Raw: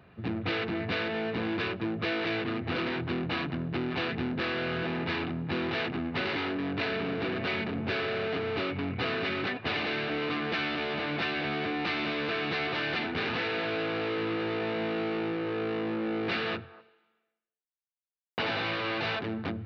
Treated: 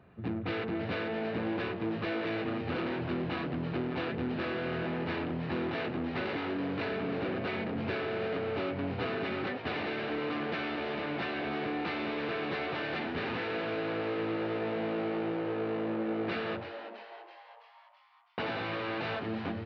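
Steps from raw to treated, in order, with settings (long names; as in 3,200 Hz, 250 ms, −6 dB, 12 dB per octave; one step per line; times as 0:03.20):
high-shelf EQ 2,200 Hz −10 dB
mains-hum notches 50/100/150 Hz
echo with shifted repeats 330 ms, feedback 56%, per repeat +120 Hz, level −10.5 dB
level −1.5 dB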